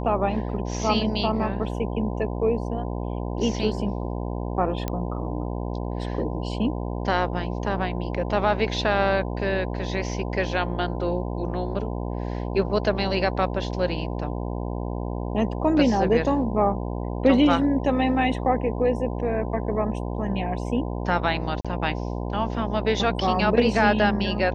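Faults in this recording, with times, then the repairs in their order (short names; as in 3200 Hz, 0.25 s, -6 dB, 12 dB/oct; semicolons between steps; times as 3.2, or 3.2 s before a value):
buzz 60 Hz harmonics 17 -29 dBFS
4.88 pop -13 dBFS
21.61–21.65 gap 36 ms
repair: de-click; de-hum 60 Hz, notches 17; interpolate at 21.61, 36 ms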